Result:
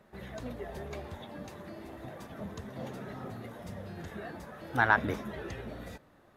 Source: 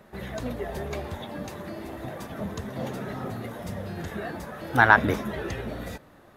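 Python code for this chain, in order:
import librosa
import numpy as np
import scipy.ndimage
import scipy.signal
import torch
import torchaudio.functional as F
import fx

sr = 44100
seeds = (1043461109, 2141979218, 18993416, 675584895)

y = fx.high_shelf(x, sr, hz=11000.0, db=-5.0)
y = F.gain(torch.from_numpy(y), -8.0).numpy()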